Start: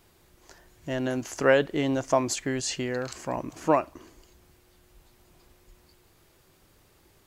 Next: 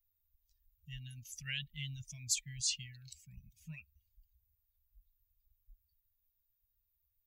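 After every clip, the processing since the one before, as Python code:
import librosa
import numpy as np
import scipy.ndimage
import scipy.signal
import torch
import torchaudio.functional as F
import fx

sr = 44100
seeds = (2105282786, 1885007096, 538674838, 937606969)

y = fx.bin_expand(x, sr, power=2.0)
y = scipy.signal.sosfilt(scipy.signal.cheby2(4, 50, [290.0, 1200.0], 'bandstop', fs=sr, output='sos'), y)
y = fx.peak_eq(y, sr, hz=110.0, db=-6.5, octaves=0.63)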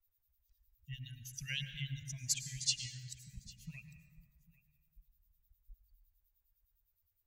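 y = fx.harmonic_tremolo(x, sr, hz=9.8, depth_pct=100, crossover_hz=2500.0)
y = y + 10.0 ** (-22.0 / 20.0) * np.pad(y, (int(800 * sr / 1000.0), 0))[:len(y)]
y = fx.rev_plate(y, sr, seeds[0], rt60_s=2.0, hf_ratio=0.4, predelay_ms=90, drr_db=8.0)
y = y * 10.0 ** (5.5 / 20.0)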